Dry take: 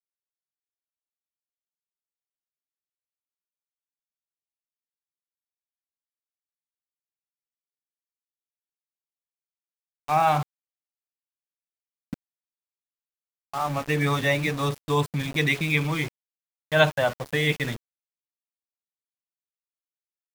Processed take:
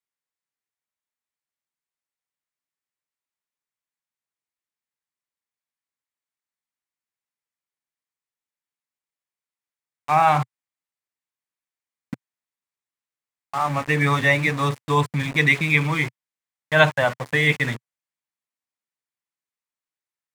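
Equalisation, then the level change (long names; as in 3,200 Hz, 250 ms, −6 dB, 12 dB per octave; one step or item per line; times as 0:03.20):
octave-band graphic EQ 125/250/500/1,000/2,000/4,000/8,000 Hz +9/+6/+4/+9/+11/+3/+7 dB
−6.0 dB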